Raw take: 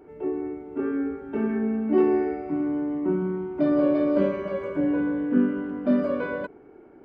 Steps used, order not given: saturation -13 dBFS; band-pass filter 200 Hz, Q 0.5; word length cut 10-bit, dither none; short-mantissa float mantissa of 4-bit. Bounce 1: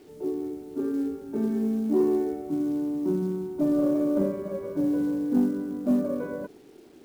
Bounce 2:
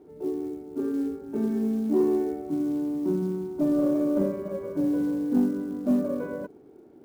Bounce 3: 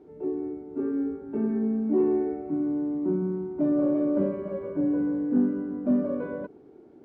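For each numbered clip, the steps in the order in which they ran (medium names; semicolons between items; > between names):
band-pass filter > short-mantissa float > word length cut > saturation; word length cut > band-pass filter > short-mantissa float > saturation; short-mantissa float > word length cut > saturation > band-pass filter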